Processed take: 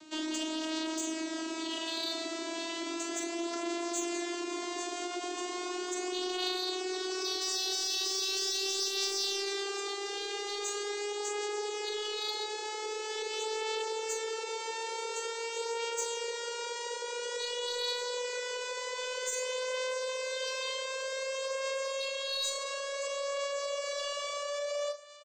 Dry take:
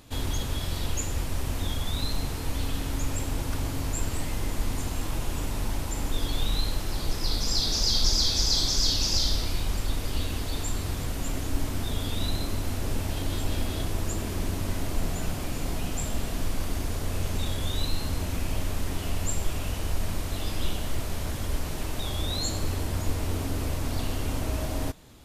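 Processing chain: vocoder on a note that slides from D#4, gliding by +11 st; peak limiter -27.5 dBFS, peak gain reduction 11.5 dB; treble shelf 2.1 kHz +11.5 dB; saturation -21.5 dBFS, distortion -21 dB; doubling 41 ms -8.5 dB; trim -2 dB

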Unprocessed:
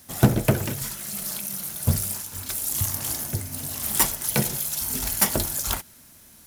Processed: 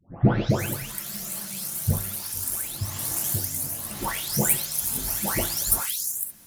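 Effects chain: delay that grows with frequency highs late, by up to 497 ms

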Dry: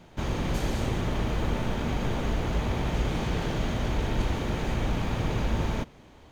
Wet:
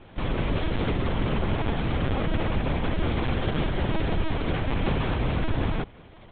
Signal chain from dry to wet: band-stop 830 Hz, Q 12; in parallel at +1 dB: peak limiter -22.5 dBFS, peak gain reduction 7 dB; on the sum: LPC vocoder at 8 kHz pitch kept; trim -2.5 dB

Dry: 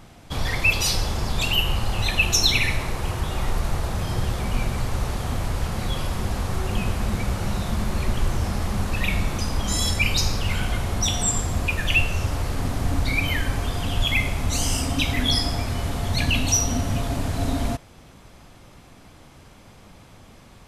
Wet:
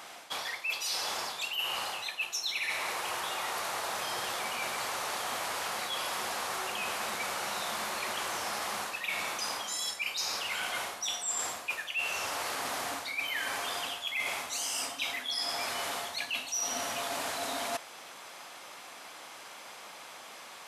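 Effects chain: high-pass 760 Hz 12 dB/octave; reverse; compression 16:1, threshold -38 dBFS, peak gain reduction 23.5 dB; reverse; trim +7 dB

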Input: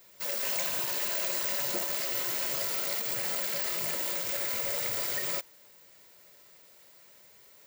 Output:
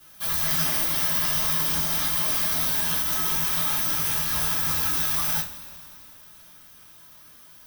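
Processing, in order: formant shift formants -3 st; frequency shift -400 Hz; two-slope reverb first 0.24 s, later 2.8 s, from -22 dB, DRR -7 dB

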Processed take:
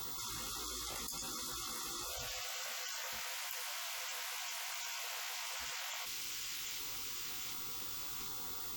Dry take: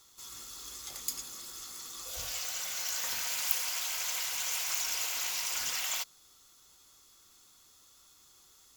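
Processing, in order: coarse spectral quantiser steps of 30 dB; treble shelf 3.9 kHz -8 dB; whistle 16 kHz -61 dBFS; chorus 1.4 Hz, delay 16 ms, depth 2.1 ms; on a send: feedback echo behind a high-pass 749 ms, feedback 46%, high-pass 2.4 kHz, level -16 dB; on the sum: level flattener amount 100%; trim -5 dB

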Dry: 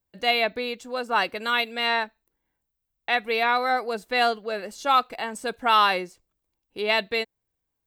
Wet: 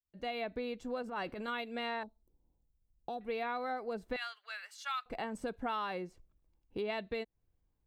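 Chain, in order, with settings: fade-in on the opening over 0.64 s; 4.16–5.06 s: high-pass 1.4 kHz 24 dB/octave; tilt EQ -3 dB/octave; compression 4:1, threshold -34 dBFS, peak gain reduction 16 dB; 1.02–1.48 s: transient shaper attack -10 dB, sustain +6 dB; 2.03–3.21 s: Butterworth band-stop 2 kHz, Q 0.5; trim -2.5 dB

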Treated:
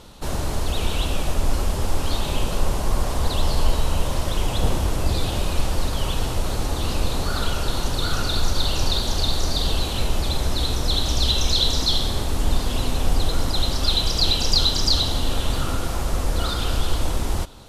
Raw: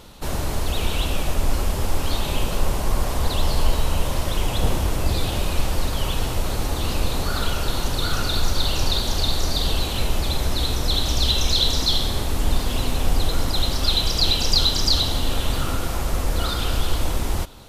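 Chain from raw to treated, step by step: low-pass 12 kHz 12 dB/octave; peaking EQ 2.2 kHz -2.5 dB

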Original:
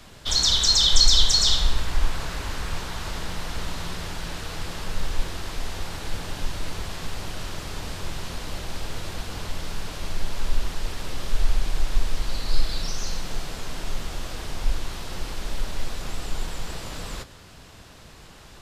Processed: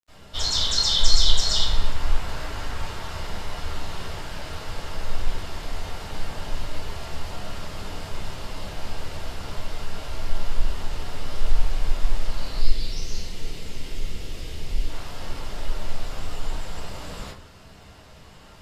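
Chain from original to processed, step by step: 12.51–14.81 s: high-order bell 980 Hz -10 dB; reverberation RT60 0.35 s, pre-delay 76 ms; crackle 15 per s -51 dBFS; trim -4 dB

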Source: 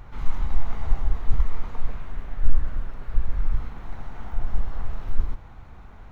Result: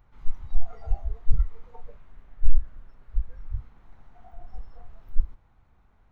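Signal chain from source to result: spectral noise reduction 17 dB

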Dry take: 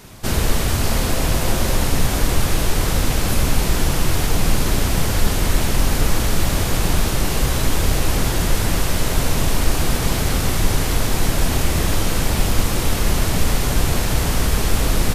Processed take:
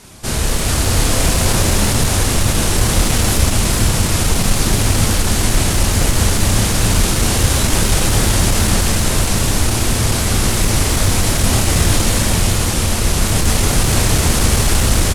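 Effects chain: low-pass 11 kHz 24 dB/octave; treble shelf 6.1 kHz +8.5 dB; level rider; one-sided clip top -11 dBFS, bottom -5.5 dBFS; doubling 29 ms -5 dB; on a send: frequency-shifting echo 411 ms, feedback 37%, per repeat -120 Hz, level -4 dB; on the sum: trim -1 dB

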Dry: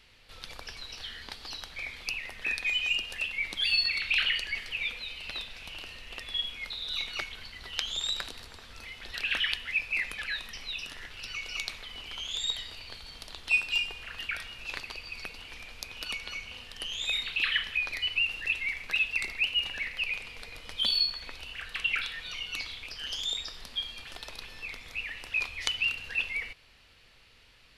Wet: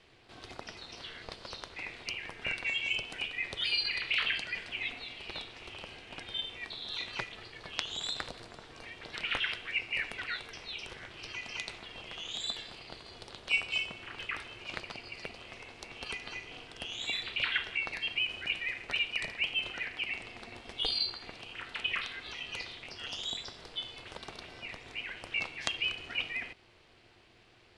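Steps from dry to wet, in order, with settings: elliptic band-pass 120–9100 Hz, stop band 40 dB; tilt shelf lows +6.5 dB, about 850 Hz; ring modulator 230 Hz; trim +4.5 dB

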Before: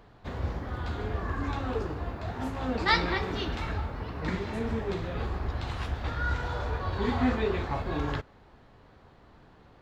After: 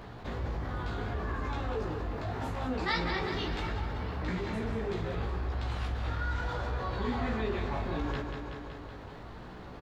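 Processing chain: chorus 0.72 Hz, delay 16 ms, depth 3.6 ms; on a send: feedback delay 188 ms, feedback 54%, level -10 dB; on the sum: level flattener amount 50%; trim -4.5 dB

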